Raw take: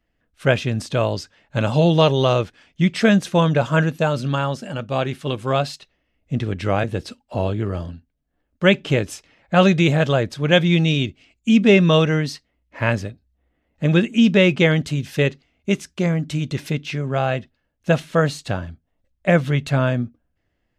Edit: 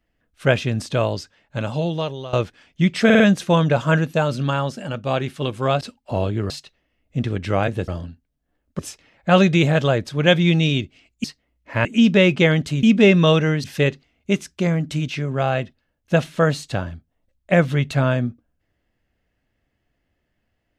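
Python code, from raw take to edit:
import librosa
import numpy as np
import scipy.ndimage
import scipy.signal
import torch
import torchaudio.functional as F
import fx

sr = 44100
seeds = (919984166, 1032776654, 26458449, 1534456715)

y = fx.edit(x, sr, fx.fade_out_to(start_s=0.95, length_s=1.38, floor_db=-18.5),
    fx.stutter(start_s=3.05, slice_s=0.05, count=4),
    fx.move(start_s=7.04, length_s=0.69, to_s=5.66),
    fx.cut(start_s=8.64, length_s=0.4),
    fx.move(start_s=11.49, length_s=0.81, to_s=15.03),
    fx.cut(start_s=12.91, length_s=1.14),
    fx.cut(start_s=16.47, length_s=0.37), tone=tone)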